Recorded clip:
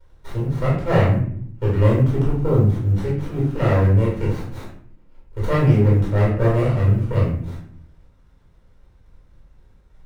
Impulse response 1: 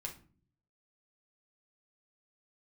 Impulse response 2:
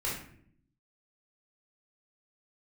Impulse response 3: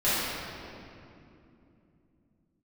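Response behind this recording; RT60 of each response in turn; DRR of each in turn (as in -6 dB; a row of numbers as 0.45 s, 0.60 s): 2; no single decay rate, 0.60 s, 2.8 s; 0.0 dB, -7.0 dB, -14.0 dB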